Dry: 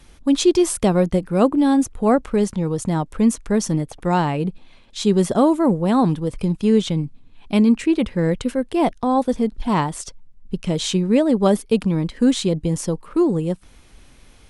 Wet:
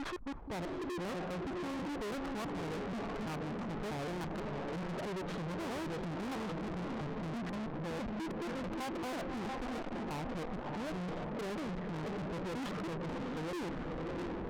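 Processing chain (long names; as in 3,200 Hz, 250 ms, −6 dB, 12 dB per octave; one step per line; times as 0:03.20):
slices reordered back to front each 163 ms, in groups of 3
reversed playback
downward compressor 10 to 1, threshold −29 dBFS, peak gain reduction 18.5 dB
reversed playback
brickwall limiter −27 dBFS, peak gain reduction 10 dB
in parallel at −9.5 dB: decimation without filtering 10×
on the sum: auto-filter low-pass saw down 0.95 Hz 410–1,700 Hz
feedback delay with all-pass diffusion 642 ms, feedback 45%, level −7 dB
tube saturation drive 48 dB, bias 0.25
level +10 dB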